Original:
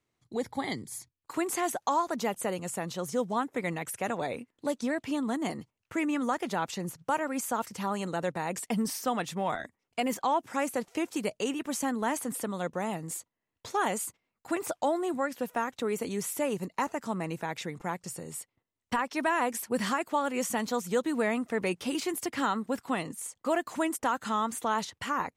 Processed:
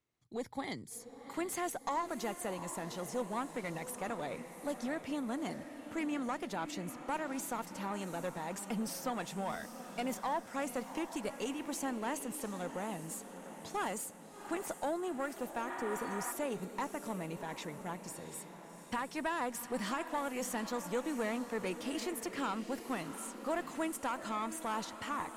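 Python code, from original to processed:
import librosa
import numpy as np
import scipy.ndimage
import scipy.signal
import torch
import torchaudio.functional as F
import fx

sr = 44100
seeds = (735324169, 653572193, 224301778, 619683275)

y = fx.diode_clip(x, sr, knee_db=-23.5)
y = fx.echo_diffused(y, sr, ms=738, feedback_pct=55, wet_db=-10.5)
y = fx.spec_repair(y, sr, seeds[0], start_s=15.71, length_s=0.58, low_hz=670.0, high_hz=4400.0, source='before')
y = y * 10.0 ** (-6.0 / 20.0)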